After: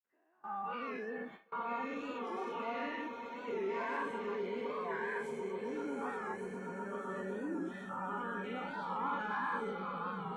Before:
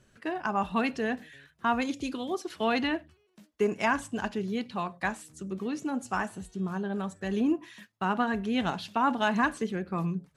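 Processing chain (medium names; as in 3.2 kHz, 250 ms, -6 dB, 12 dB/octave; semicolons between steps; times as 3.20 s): every event in the spectrogram widened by 240 ms; saturation -18 dBFS, distortion -13 dB; peak limiter -29.5 dBFS, peak gain reduction 11.5 dB; on a send: echo with a slow build-up 127 ms, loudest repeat 8, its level -11.5 dB; on the sum: bit crusher 8-bit; three-band isolator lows -14 dB, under 250 Hz, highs -20 dB, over 2.1 kHz; spectral noise reduction 15 dB; bass shelf 130 Hz -9.5 dB; gate with hold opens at -39 dBFS; warped record 45 rpm, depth 100 cents; trim -1 dB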